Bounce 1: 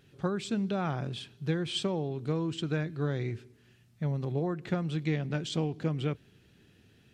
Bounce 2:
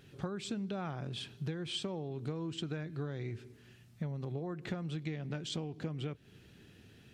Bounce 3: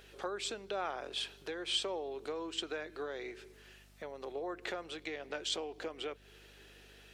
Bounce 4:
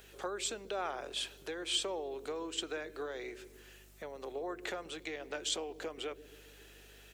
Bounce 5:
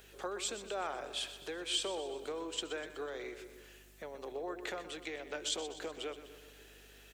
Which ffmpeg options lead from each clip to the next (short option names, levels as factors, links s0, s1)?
-af "acompressor=threshold=0.0126:ratio=10,volume=1.41"
-af "highpass=f=410:w=0.5412,highpass=f=410:w=1.3066,aeval=exprs='val(0)+0.000447*(sin(2*PI*50*n/s)+sin(2*PI*2*50*n/s)/2+sin(2*PI*3*50*n/s)/3+sin(2*PI*4*50*n/s)/4+sin(2*PI*5*50*n/s)/5)':c=same,volume=1.88"
-filter_complex "[0:a]acrossover=split=450|4900[s0][s1][s2];[s0]aecho=1:1:138|276|414|552|690|828|966:0.355|0.202|0.115|0.0657|0.0375|0.0213|0.0122[s3];[s2]aexciter=amount=3:drive=1.3:freq=6300[s4];[s3][s1][s4]amix=inputs=3:normalize=0"
-af "aecho=1:1:124|248|372|496|620|744:0.237|0.133|0.0744|0.0416|0.0233|0.0131,volume=0.891"